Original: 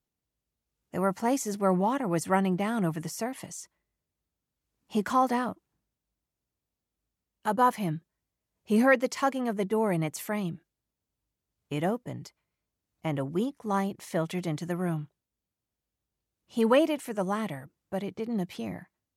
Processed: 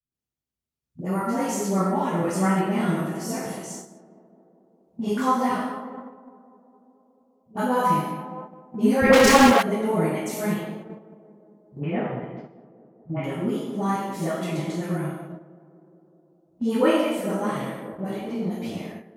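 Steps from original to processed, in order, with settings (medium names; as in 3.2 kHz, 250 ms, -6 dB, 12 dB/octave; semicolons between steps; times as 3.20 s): on a send: tape echo 205 ms, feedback 84%, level -10 dB, low-pass 1.3 kHz; on the sum: gated-style reverb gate 280 ms falling, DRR -7.5 dB; 9.01–9.51 s: waveshaping leveller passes 5; phase dispersion highs, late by 119 ms, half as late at 380 Hz; 11.80–13.24 s: Chebyshev low-pass 2.5 kHz, order 3; gate -32 dBFS, range -8 dB; trim -5 dB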